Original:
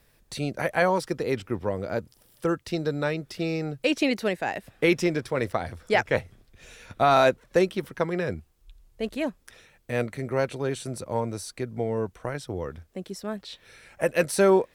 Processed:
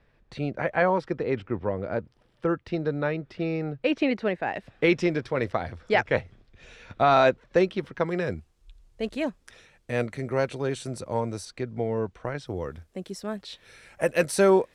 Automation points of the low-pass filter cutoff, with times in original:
2,500 Hz
from 0:04.54 4,400 Hz
from 0:08.06 8,600 Hz
from 0:11.45 4,900 Hz
from 0:12.46 12,000 Hz

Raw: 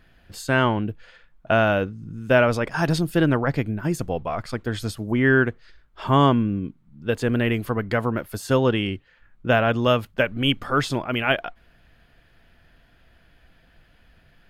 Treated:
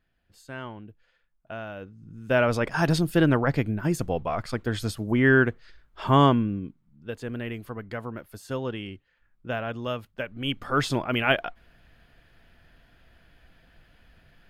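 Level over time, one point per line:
0:01.75 −18 dB
0:01.97 −11 dB
0:02.62 −1 dB
0:06.23 −1 dB
0:07.13 −11.5 dB
0:10.29 −11.5 dB
0:10.86 −1 dB

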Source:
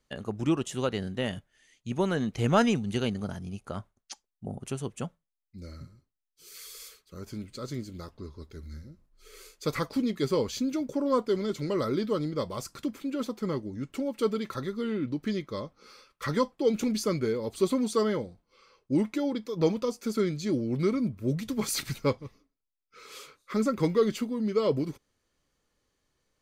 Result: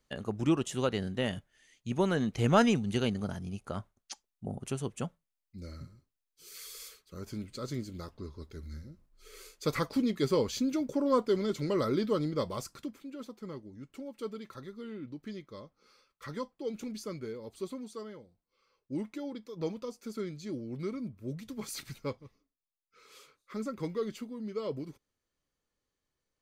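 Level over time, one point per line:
0:12.54 −1 dB
0:13.06 −11.5 dB
0:17.52 −11.5 dB
0:18.21 −19 dB
0:18.96 −10 dB

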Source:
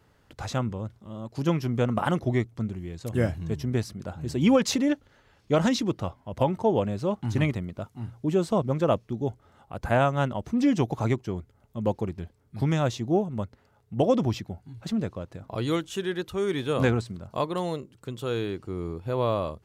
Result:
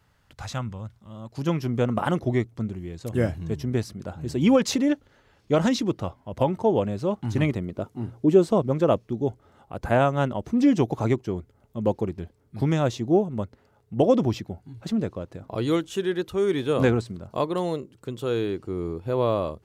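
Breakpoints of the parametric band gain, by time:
parametric band 370 Hz 1.5 octaves
0:00.99 −9 dB
0:01.67 +2.5 dB
0:07.35 +2.5 dB
0:08.01 +13.5 dB
0:08.62 +4.5 dB

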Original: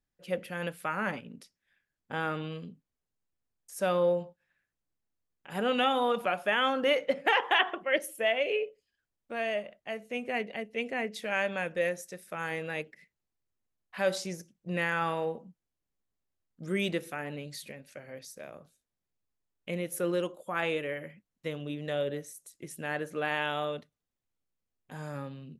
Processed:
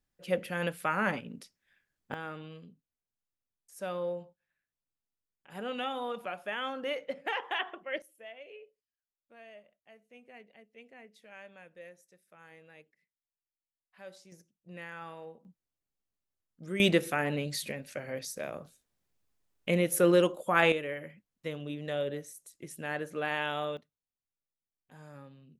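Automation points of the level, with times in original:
+2.5 dB
from 0:02.14 −8.5 dB
from 0:08.02 −20 dB
from 0:14.32 −14 dB
from 0:15.45 −4.5 dB
from 0:16.80 +7 dB
from 0:20.72 −1.5 dB
from 0:23.77 −11 dB

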